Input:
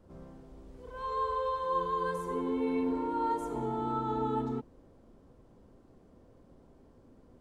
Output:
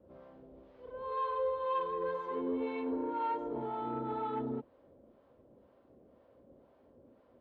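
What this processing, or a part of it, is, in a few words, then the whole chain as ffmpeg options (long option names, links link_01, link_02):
guitar amplifier with harmonic tremolo: -filter_complex "[0:a]acrossover=split=640[link_01][link_02];[link_01]aeval=exprs='val(0)*(1-0.7/2+0.7/2*cos(2*PI*2*n/s))':channel_layout=same[link_03];[link_02]aeval=exprs='val(0)*(1-0.7/2-0.7/2*cos(2*PI*2*n/s))':channel_layout=same[link_04];[link_03][link_04]amix=inputs=2:normalize=0,asoftclip=type=tanh:threshold=-27dB,highpass=92,equalizer=frequency=110:width_type=q:width=4:gain=-5,equalizer=frequency=170:width_type=q:width=4:gain=-7,equalizer=frequency=570:width_type=q:width=4:gain=9,lowpass=frequency=3700:width=0.5412,lowpass=frequency=3700:width=1.3066,asettb=1/sr,asplit=3[link_05][link_06][link_07];[link_05]atrim=end=2.344[link_08];[link_06]atrim=start=2.34:end=2.82,asetpts=PTS-STARTPTS,afade=type=in:duration=0.004:curve=qsin,afade=type=out:start_time=0.476:duration=0.004:curve=qsin,highshelf=frequency=4200:gain=6[link_09];[link_07]atrim=start=2.816[link_10];[link_08][link_09]acrossfade=duration=0.004:curve1=hsin:curve2=qsin[link_11];[link_11][link_10]acrossfade=duration=0.004:curve1=qsin:curve2=hsin"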